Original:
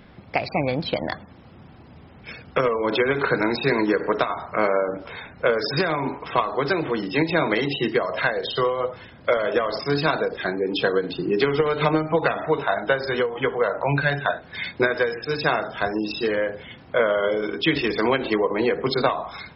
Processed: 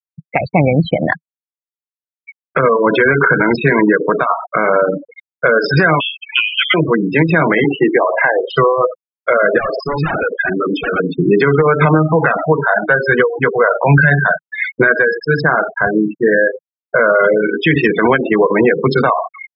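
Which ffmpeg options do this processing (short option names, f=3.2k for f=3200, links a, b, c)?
-filter_complex "[0:a]asettb=1/sr,asplit=3[a][b][c];[a]atrim=end=6.004[d];[b]atrim=start=6:end=6.74,asetpts=PTS-STARTPTS,afade=t=in:d=0.004:c=qsin,afade=t=out:st=0.736:d=0.004:c=qsin,lowpass=f=3.1k:t=q:w=0.5098,lowpass=f=3.1k:t=q:w=0.6013,lowpass=f=3.1k:t=q:w=0.9,lowpass=f=3.1k:t=q:w=2.563,afreqshift=-3600[e];[c]atrim=start=6.736[f];[d][e]acrossfade=d=0.004:c1=hsin:c2=qsin[g];[g][f]acrossfade=d=0.004:c1=qsin:c2=hsin,asettb=1/sr,asplit=3[h][i][j];[h]atrim=end=7.644[k];[i]atrim=start=7.64:end=8.5,asetpts=PTS-STARTPTS,afade=t=in:d=0.004:c=qsin,afade=t=out:st=0.856:d=0.004:c=qsin,highpass=f=170:w=0.5412,highpass=f=170:w=1.3066,equalizer=f=210:t=q:w=4:g=-8,equalizer=f=330:t=q:w=4:g=4,equalizer=f=840:t=q:w=4:g=8,equalizer=f=1.4k:t=q:w=4:g=-8,lowpass=f=2.9k:w=0.5412,lowpass=f=2.9k:w=1.3066[l];[j]atrim=start=8.496[m];[k][l]acrossfade=d=0.004:c1=hsin:c2=qsin[n];[n][m]acrossfade=d=0.004:c1=qsin:c2=hsin,asettb=1/sr,asplit=3[o][p][q];[o]atrim=end=9.584[r];[p]atrim=start=9.58:end=11,asetpts=PTS-STARTPTS,afade=t=in:d=0.004:c=qsin,afade=t=out:st=1.416:d=0.004:c=qsin,aeval=exprs='0.075*(abs(mod(val(0)/0.075+3,4)-2)-1)':c=same[s];[q]atrim=start=10.996[t];[r][s]acrossfade=d=0.004:c1=hsin:c2=qsin[u];[u][t]acrossfade=d=0.004:c1=qsin:c2=hsin,asettb=1/sr,asplit=3[v][w][x];[v]atrim=end=13.764[y];[w]atrim=start=13.76:end=14.47,asetpts=PTS-STARTPTS,afade=t=in:d=0.004:c=qsin,afade=t=out:st=0.706:d=0.004:c=qsin,lowshelf=f=130:t=q:w=3:g=-6.5[z];[x]atrim=start=14.466[aa];[y][z]acrossfade=d=0.004:c1=hsin:c2=qsin[ab];[ab][aa]acrossfade=d=0.004:c1=qsin:c2=hsin,asettb=1/sr,asplit=3[ac][ad][ae];[ac]atrim=end=15.414[af];[ad]atrim=start=15.41:end=17.09,asetpts=PTS-STARTPTS,afade=t=in:d=0.004:c=qsin,afade=t=out:st=1.676:d=0.004:c=qsin,lowpass=f=2.2k:w=0.5412,lowpass=f=2.2k:w=1.3066[ag];[ae]atrim=start=17.086[ah];[af][ag]acrossfade=d=0.004:c1=hsin:c2=qsin[ai];[ai][ah]acrossfade=d=0.004:c1=qsin:c2=hsin,afftfilt=real='re*gte(hypot(re,im),0.0891)':imag='im*gte(hypot(re,im),0.0891)':win_size=1024:overlap=0.75,equalizer=f=160:t=o:w=0.67:g=7,equalizer=f=1.6k:t=o:w=0.67:g=9,equalizer=f=4k:t=o:w=0.67:g=-12,alimiter=level_in=11.5dB:limit=-1dB:release=50:level=0:latency=1,volume=-1dB"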